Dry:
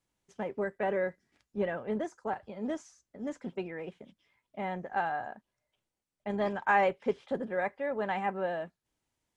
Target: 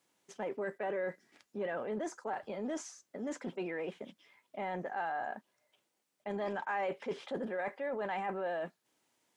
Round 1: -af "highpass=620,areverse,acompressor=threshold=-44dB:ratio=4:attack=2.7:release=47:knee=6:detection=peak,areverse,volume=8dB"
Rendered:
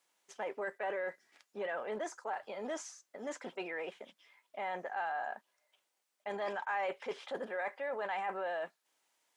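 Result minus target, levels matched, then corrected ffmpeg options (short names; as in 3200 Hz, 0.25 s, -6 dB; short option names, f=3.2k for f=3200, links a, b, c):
250 Hz band -7.0 dB
-af "highpass=250,areverse,acompressor=threshold=-44dB:ratio=4:attack=2.7:release=47:knee=6:detection=peak,areverse,volume=8dB"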